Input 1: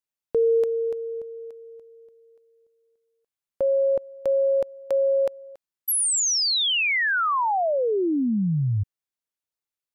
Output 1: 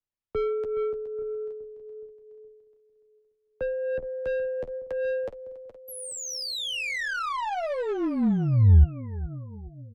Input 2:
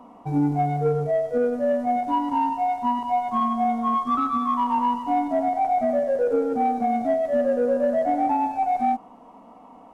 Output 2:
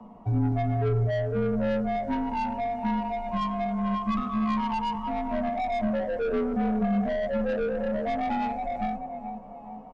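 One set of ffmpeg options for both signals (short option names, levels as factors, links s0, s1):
-filter_complex "[0:a]aemphasis=mode=reproduction:type=bsi,aecho=1:1:419|838|1257|1676|2095:0.2|0.102|0.0519|0.0265|0.0135,flanger=delay=7.9:depth=4.9:regen=29:speed=0.36:shape=sinusoidal,acrossover=split=230[s0][s1];[s1]asoftclip=type=tanh:threshold=0.0501[s2];[s0][s2]amix=inputs=2:normalize=0,afreqshift=-29"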